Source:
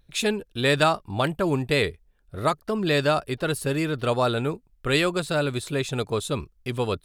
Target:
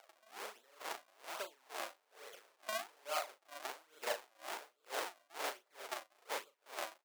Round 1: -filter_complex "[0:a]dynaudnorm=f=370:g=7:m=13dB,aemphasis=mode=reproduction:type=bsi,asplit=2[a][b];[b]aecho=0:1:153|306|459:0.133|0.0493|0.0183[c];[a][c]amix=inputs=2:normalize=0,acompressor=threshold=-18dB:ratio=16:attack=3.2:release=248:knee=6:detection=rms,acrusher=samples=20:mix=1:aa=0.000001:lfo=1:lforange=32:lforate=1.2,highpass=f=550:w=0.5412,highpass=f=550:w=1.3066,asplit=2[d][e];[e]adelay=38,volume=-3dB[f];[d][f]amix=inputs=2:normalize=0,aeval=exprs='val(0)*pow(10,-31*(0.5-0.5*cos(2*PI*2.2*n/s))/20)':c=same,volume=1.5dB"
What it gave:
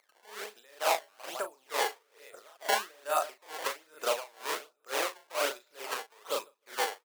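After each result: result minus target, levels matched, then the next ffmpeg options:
compressor: peak gain reduction -10 dB; decimation with a swept rate: distortion -7 dB
-filter_complex "[0:a]dynaudnorm=f=370:g=7:m=13dB,aemphasis=mode=reproduction:type=bsi,asplit=2[a][b];[b]aecho=0:1:153|306|459:0.133|0.0493|0.0183[c];[a][c]amix=inputs=2:normalize=0,acompressor=threshold=-28.5dB:ratio=16:attack=3.2:release=248:knee=6:detection=rms,acrusher=samples=20:mix=1:aa=0.000001:lfo=1:lforange=32:lforate=1.2,highpass=f=550:w=0.5412,highpass=f=550:w=1.3066,asplit=2[d][e];[e]adelay=38,volume=-3dB[f];[d][f]amix=inputs=2:normalize=0,aeval=exprs='val(0)*pow(10,-31*(0.5-0.5*cos(2*PI*2.2*n/s))/20)':c=same,volume=1.5dB"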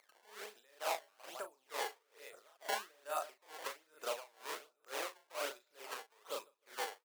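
decimation with a swept rate: distortion -8 dB
-filter_complex "[0:a]dynaudnorm=f=370:g=7:m=13dB,aemphasis=mode=reproduction:type=bsi,asplit=2[a][b];[b]aecho=0:1:153|306|459:0.133|0.0493|0.0183[c];[a][c]amix=inputs=2:normalize=0,acompressor=threshold=-28.5dB:ratio=16:attack=3.2:release=248:knee=6:detection=rms,acrusher=samples=57:mix=1:aa=0.000001:lfo=1:lforange=91.2:lforate=1.2,highpass=f=550:w=0.5412,highpass=f=550:w=1.3066,asplit=2[d][e];[e]adelay=38,volume=-3dB[f];[d][f]amix=inputs=2:normalize=0,aeval=exprs='val(0)*pow(10,-31*(0.5-0.5*cos(2*PI*2.2*n/s))/20)':c=same,volume=1.5dB"

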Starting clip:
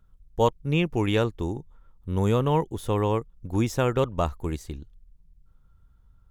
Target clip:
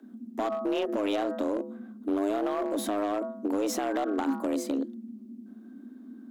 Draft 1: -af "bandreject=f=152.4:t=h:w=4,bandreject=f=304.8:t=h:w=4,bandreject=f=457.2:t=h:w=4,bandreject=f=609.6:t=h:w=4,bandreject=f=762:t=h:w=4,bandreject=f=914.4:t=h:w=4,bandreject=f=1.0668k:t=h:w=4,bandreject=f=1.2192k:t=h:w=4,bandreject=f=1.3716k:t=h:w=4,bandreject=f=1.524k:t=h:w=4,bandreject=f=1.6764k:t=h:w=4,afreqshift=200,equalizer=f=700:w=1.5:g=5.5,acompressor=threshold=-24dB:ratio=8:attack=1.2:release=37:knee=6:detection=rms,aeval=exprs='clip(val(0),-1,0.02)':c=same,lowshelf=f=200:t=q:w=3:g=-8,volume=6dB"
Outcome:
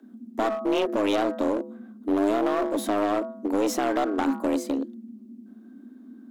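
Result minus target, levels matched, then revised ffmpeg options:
compressor: peak gain reduction -6.5 dB
-af "bandreject=f=152.4:t=h:w=4,bandreject=f=304.8:t=h:w=4,bandreject=f=457.2:t=h:w=4,bandreject=f=609.6:t=h:w=4,bandreject=f=762:t=h:w=4,bandreject=f=914.4:t=h:w=4,bandreject=f=1.0668k:t=h:w=4,bandreject=f=1.2192k:t=h:w=4,bandreject=f=1.3716k:t=h:w=4,bandreject=f=1.524k:t=h:w=4,bandreject=f=1.6764k:t=h:w=4,afreqshift=200,equalizer=f=700:w=1.5:g=5.5,acompressor=threshold=-31.5dB:ratio=8:attack=1.2:release=37:knee=6:detection=rms,aeval=exprs='clip(val(0),-1,0.02)':c=same,lowshelf=f=200:t=q:w=3:g=-8,volume=6dB"

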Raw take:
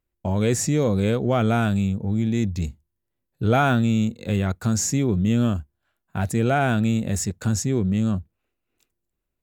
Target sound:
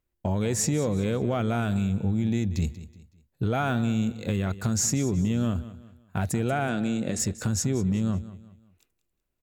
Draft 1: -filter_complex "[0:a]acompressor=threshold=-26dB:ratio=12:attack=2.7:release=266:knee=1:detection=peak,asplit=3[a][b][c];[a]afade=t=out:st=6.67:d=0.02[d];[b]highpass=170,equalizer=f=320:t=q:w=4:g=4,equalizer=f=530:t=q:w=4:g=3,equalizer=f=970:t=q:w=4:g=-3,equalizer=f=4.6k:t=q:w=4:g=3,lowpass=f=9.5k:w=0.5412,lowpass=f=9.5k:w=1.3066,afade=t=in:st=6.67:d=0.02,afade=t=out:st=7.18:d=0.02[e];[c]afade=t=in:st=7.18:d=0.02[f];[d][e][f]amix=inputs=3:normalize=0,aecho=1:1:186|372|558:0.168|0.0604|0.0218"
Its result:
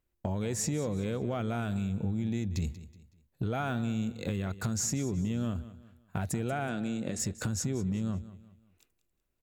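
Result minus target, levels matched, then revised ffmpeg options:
compressor: peak gain reduction +6.5 dB
-filter_complex "[0:a]acompressor=threshold=-19dB:ratio=12:attack=2.7:release=266:knee=1:detection=peak,asplit=3[a][b][c];[a]afade=t=out:st=6.67:d=0.02[d];[b]highpass=170,equalizer=f=320:t=q:w=4:g=4,equalizer=f=530:t=q:w=4:g=3,equalizer=f=970:t=q:w=4:g=-3,equalizer=f=4.6k:t=q:w=4:g=3,lowpass=f=9.5k:w=0.5412,lowpass=f=9.5k:w=1.3066,afade=t=in:st=6.67:d=0.02,afade=t=out:st=7.18:d=0.02[e];[c]afade=t=in:st=7.18:d=0.02[f];[d][e][f]amix=inputs=3:normalize=0,aecho=1:1:186|372|558:0.168|0.0604|0.0218"

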